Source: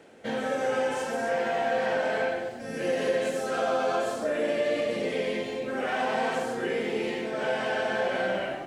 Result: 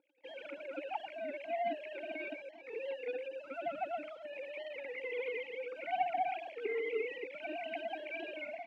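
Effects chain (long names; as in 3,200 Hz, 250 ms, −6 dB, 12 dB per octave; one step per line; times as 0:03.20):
three sine waves on the formant tracks
in parallel at −2.5 dB: speech leveller within 3 dB 0.5 s
on the sum: leveller curve on the samples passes 2
formant filter u
wow of a warped record 33 1/3 rpm, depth 100 cents
level +2.5 dB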